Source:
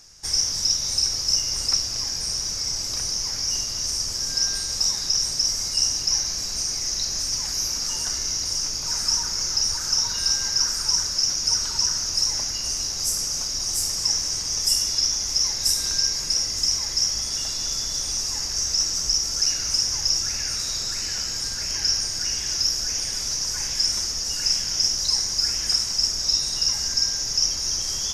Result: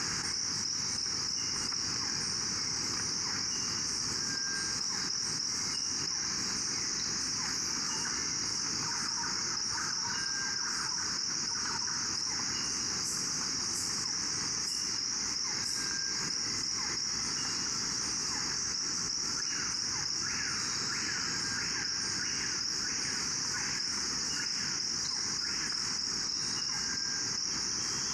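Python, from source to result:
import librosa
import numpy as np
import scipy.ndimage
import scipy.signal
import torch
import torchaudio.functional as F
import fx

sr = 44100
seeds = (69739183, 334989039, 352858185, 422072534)

y = fx.bandpass_edges(x, sr, low_hz=230.0, high_hz=4600.0)
y = fx.low_shelf(y, sr, hz=400.0, db=5.5)
y = fx.fixed_phaser(y, sr, hz=1500.0, stages=4)
y = fx.env_flatten(y, sr, amount_pct=100)
y = y * librosa.db_to_amplitude(-5.0)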